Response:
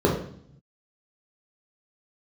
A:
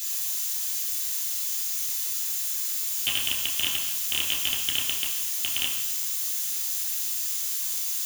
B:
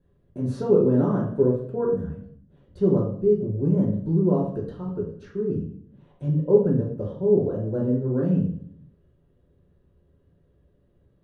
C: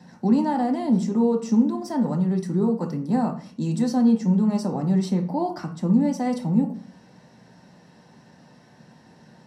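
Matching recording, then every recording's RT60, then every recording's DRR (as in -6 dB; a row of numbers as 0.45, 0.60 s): B; 1.0, 0.60, 0.45 s; -4.0, -4.5, 2.5 dB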